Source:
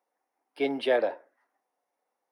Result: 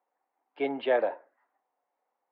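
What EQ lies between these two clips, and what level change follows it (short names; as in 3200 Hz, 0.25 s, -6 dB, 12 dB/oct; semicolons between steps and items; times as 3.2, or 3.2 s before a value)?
LPF 3200 Hz 24 dB/oct; bell 920 Hz +5.5 dB 1.4 oct; -3.5 dB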